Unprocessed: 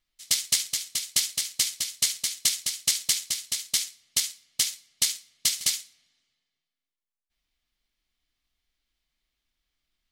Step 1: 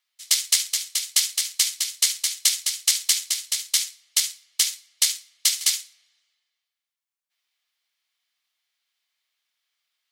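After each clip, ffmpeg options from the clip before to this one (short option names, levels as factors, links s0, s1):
-af "highpass=890,volume=1.58"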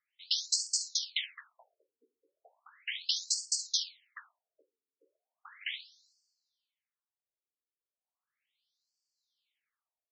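-filter_complex "[0:a]acrossover=split=420|970|3300[s0][s1][s2][s3];[s3]alimiter=limit=0.237:level=0:latency=1:release=349[s4];[s0][s1][s2][s4]amix=inputs=4:normalize=0,afftfilt=real='re*between(b*sr/1024,340*pow(6200/340,0.5+0.5*sin(2*PI*0.36*pts/sr))/1.41,340*pow(6200/340,0.5+0.5*sin(2*PI*0.36*pts/sr))*1.41)':imag='im*between(b*sr/1024,340*pow(6200/340,0.5+0.5*sin(2*PI*0.36*pts/sr))/1.41,340*pow(6200/340,0.5+0.5*sin(2*PI*0.36*pts/sr))*1.41)':win_size=1024:overlap=0.75,volume=0.794"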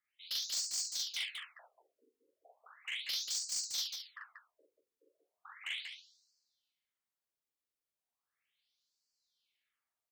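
-filter_complex "[0:a]asoftclip=type=tanh:threshold=0.0282,asplit=2[s0][s1];[s1]aecho=0:1:40.82|186.6:1|0.562[s2];[s0][s2]amix=inputs=2:normalize=0,volume=0.708"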